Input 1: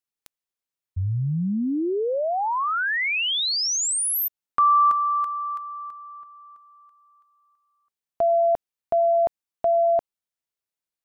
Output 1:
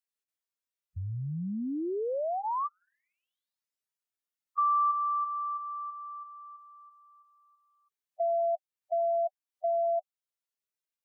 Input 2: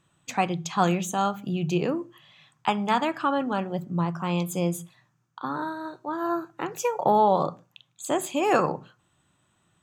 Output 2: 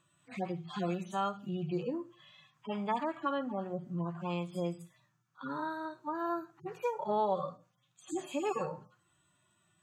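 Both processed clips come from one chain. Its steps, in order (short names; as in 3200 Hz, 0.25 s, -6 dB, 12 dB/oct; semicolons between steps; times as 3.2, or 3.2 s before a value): median-filter separation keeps harmonic; low shelf 300 Hz -8 dB; notch 820 Hz, Q 12; compressor 1.5:1, threshold -39 dBFS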